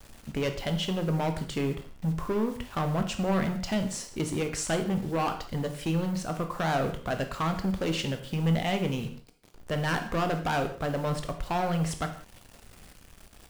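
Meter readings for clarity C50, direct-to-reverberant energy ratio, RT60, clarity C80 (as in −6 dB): 9.5 dB, 6.0 dB, non-exponential decay, 13.0 dB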